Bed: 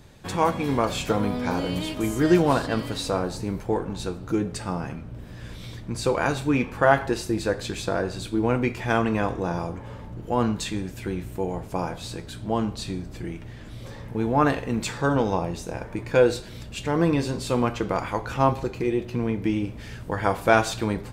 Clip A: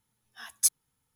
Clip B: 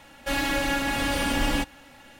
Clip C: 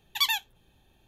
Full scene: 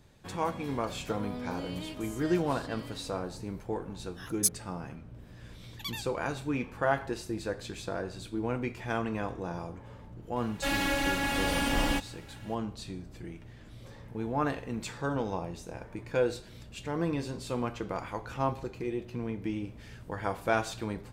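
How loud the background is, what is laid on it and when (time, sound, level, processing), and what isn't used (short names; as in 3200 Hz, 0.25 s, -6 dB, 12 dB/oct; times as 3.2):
bed -9.5 dB
3.8 add A -3 dB
5.64 add C -14 dB
10.36 add B -3.5 dB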